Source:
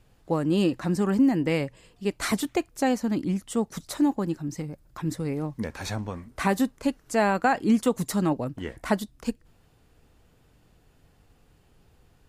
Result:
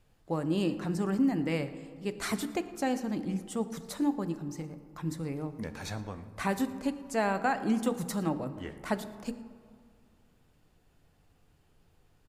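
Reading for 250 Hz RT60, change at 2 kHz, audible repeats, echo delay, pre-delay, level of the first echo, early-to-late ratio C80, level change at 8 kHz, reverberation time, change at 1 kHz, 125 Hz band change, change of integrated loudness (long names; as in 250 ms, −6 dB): 2.3 s, −5.5 dB, 1, 114 ms, 3 ms, −22.5 dB, 13.5 dB, −6.0 dB, 2.0 s, −5.5 dB, −5.5 dB, −6.0 dB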